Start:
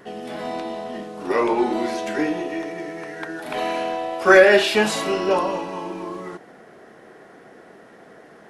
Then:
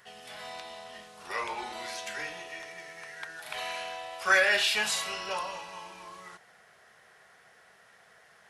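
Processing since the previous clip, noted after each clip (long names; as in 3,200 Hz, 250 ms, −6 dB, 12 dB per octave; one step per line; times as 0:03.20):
high-pass filter 44 Hz
guitar amp tone stack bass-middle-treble 10-0-10
level −1 dB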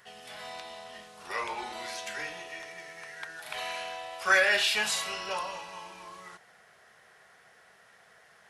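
no processing that can be heard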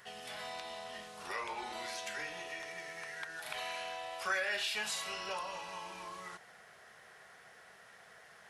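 downward compressor 2 to 1, threshold −43 dBFS, peak gain reduction 13.5 dB
level +1 dB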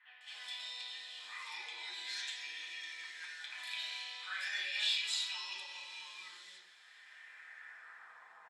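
band-pass filter sweep 3,600 Hz → 950 Hz, 0:06.66–0:08.40
three-band delay without the direct sound mids, highs, lows 210/280 ms, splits 710/2,200 Hz
convolution reverb RT60 0.45 s, pre-delay 3 ms, DRR −4.5 dB
level +6 dB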